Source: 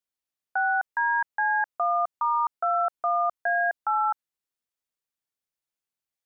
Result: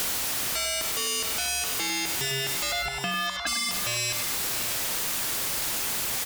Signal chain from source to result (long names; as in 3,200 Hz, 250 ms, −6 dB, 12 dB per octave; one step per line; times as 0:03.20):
converter with a step at zero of −33 dBFS
0:02.71–0:03.46: resonant band-pass 700 Hz → 1,200 Hz, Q 5.8
brickwall limiter −20.5 dBFS, peak gain reduction 3.5 dB
sine wavefolder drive 14 dB, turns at −20.5 dBFS
multi-tap delay 101/537/646 ms −7.5/−20/−10.5 dB
downward compressor, threshold −25 dBFS, peak gain reduction 5.5 dB
level −1 dB